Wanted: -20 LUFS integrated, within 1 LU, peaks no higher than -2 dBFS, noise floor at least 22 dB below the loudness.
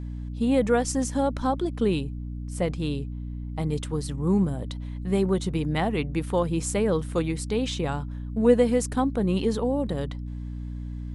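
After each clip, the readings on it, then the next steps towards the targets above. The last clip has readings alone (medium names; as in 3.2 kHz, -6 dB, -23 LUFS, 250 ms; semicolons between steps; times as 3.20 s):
hum 60 Hz; highest harmonic 300 Hz; hum level -31 dBFS; loudness -26.5 LUFS; peak level -7.5 dBFS; loudness target -20.0 LUFS
-> de-hum 60 Hz, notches 5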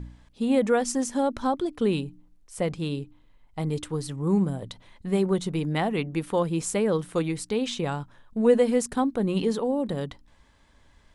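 hum not found; loudness -26.5 LUFS; peak level -9.0 dBFS; loudness target -20.0 LUFS
-> trim +6.5 dB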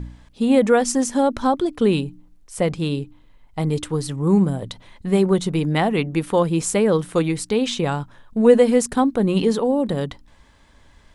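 loudness -20.0 LUFS; peak level -2.5 dBFS; noise floor -52 dBFS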